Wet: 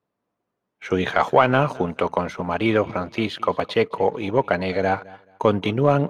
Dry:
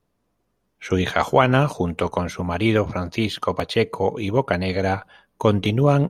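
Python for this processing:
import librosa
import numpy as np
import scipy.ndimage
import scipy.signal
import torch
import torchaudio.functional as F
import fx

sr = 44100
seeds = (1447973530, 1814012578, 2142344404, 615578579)

y = scipy.signal.sosfilt(scipy.signal.butter(2, 110.0, 'highpass', fs=sr, output='sos'), x)
y = fx.low_shelf(y, sr, hz=460.0, db=-9.0)
y = fx.leveller(y, sr, passes=1)
y = fx.lowpass(y, sr, hz=1400.0, slope=6)
y = fx.echo_feedback(y, sr, ms=215, feedback_pct=24, wet_db=-22.0)
y = F.gain(torch.from_numpy(y), 2.0).numpy()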